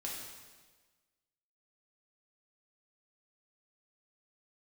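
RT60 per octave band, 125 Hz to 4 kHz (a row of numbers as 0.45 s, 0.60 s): 1.4 s, 1.4 s, 1.4 s, 1.3 s, 1.3 s, 1.3 s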